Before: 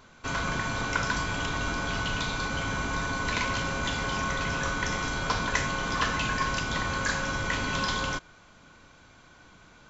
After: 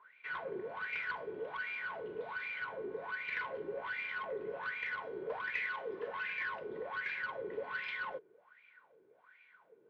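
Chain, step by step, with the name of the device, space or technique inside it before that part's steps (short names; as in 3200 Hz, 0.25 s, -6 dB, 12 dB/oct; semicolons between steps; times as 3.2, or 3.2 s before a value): wah-wah guitar rig (wah 1.3 Hz 370–2400 Hz, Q 8.8; tube stage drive 36 dB, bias 0.25; speaker cabinet 82–3700 Hz, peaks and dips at 87 Hz -9 dB, 270 Hz -7 dB, 450 Hz +8 dB, 730 Hz -5 dB, 1200 Hz -6 dB, 1900 Hz +5 dB); 5.66–6.08 tilt +1.5 dB/oct; gain +4.5 dB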